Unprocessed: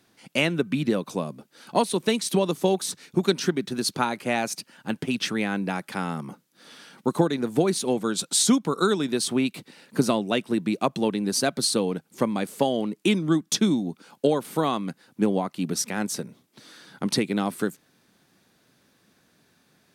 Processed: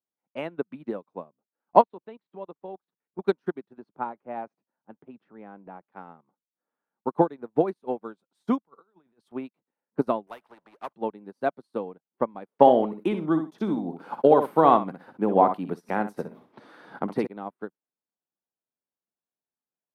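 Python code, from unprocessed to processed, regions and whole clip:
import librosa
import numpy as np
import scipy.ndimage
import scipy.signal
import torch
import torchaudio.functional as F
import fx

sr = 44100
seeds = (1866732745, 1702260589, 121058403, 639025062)

y = fx.chain(x, sr, fx.lowpass(hz=4000.0, slope=24),
    fx.level_steps(step_db=13), at=(1.81, 3.19))
y = fx.chain(y, sr, fx.lowpass(hz=1100.0, slope=6),
    fx.transient(attack_db=-1, sustain_db=7), at=(3.78, 5.89))
y = fx.chain(y, sr, fx.over_compress(threshold_db=-30.0, ratio=-1.0),
    fx.peak_eq(hz=290.0, db=-5.5, octaves=1.8),
    fx.band_widen(depth_pct=70), at=(8.65, 9.32))
y = fx.chain(y, sr, fx.highpass(hz=980.0, slope=6),
    fx.power_curve(exponent=0.7),
    fx.spectral_comp(ratio=2.0), at=(10.27, 10.93))
y = fx.chain(y, sr, fx.echo_feedback(ms=62, feedback_pct=16, wet_db=-9.5),
    fx.env_flatten(amount_pct=70), at=(12.6, 17.27))
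y = fx.env_lowpass(y, sr, base_hz=2000.0, full_db=-21.0)
y = fx.curve_eq(y, sr, hz=(130.0, 880.0, 7300.0, 13000.0), db=(0, 13, -18, -6))
y = fx.upward_expand(y, sr, threshold_db=-34.0, expansion=2.5)
y = F.gain(torch.from_numpy(y), -2.5).numpy()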